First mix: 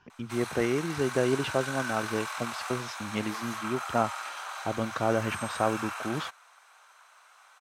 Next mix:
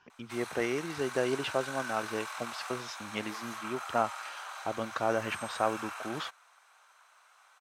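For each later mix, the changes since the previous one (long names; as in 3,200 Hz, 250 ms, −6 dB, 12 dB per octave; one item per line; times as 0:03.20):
speech: add low-shelf EQ 300 Hz −11.5 dB
background −4.5 dB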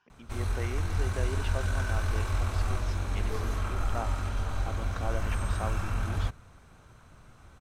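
speech −7.5 dB
background: remove high-pass filter 800 Hz 24 dB per octave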